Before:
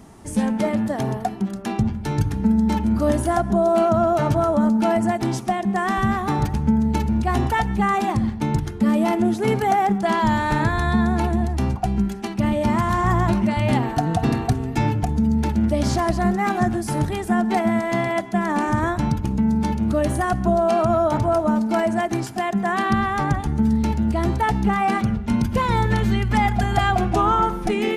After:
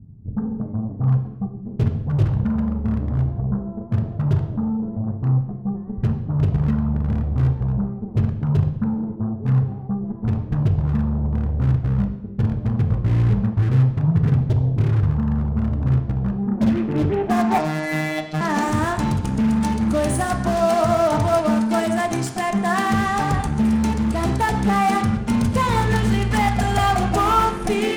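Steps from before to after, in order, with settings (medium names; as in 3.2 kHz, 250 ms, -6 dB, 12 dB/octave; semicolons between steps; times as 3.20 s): low-pass sweep 130 Hz -> 9.2 kHz, 16.34–18.77 s; Chebyshev shaper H 8 -22 dB, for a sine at -14.5 dBFS; 17.58–18.41 s: robot voice 155 Hz; on a send: reverberation RT60 0.85 s, pre-delay 3 ms, DRR 5 dB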